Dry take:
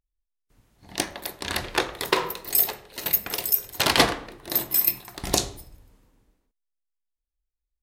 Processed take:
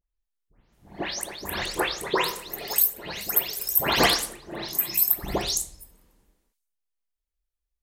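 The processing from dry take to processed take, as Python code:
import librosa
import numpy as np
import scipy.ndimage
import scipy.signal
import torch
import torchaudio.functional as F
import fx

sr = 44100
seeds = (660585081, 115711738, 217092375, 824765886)

y = fx.spec_delay(x, sr, highs='late', ms=232)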